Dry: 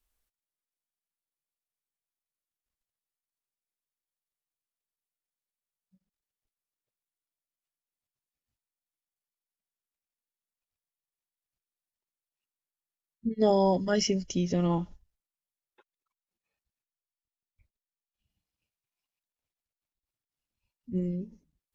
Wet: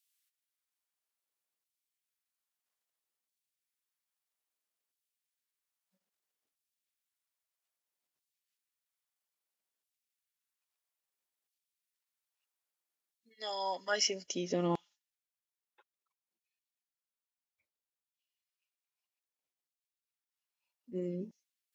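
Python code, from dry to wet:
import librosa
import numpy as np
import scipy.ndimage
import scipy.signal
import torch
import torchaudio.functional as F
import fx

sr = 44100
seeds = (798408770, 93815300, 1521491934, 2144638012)

y = fx.filter_lfo_highpass(x, sr, shape='saw_down', hz=0.61, low_hz=230.0, high_hz=3400.0, q=0.9)
y = fx.rider(y, sr, range_db=5, speed_s=2.0)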